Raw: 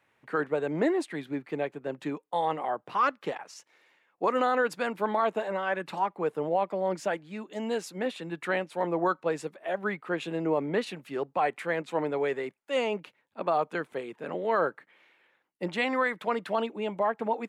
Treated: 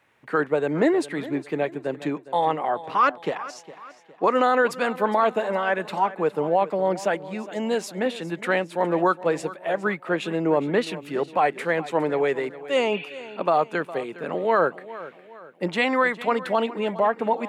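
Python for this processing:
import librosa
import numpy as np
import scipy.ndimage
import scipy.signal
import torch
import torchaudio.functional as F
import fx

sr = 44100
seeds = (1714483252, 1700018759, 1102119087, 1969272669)

y = fx.high_shelf(x, sr, hz=9400.0, db=-7.0, at=(2.05, 4.44))
y = fx.spec_repair(y, sr, seeds[0], start_s=12.95, length_s=0.38, low_hz=1400.0, high_hz=4500.0, source='both')
y = fx.echo_feedback(y, sr, ms=410, feedback_pct=42, wet_db=-16.5)
y = y * 10.0 ** (6.0 / 20.0)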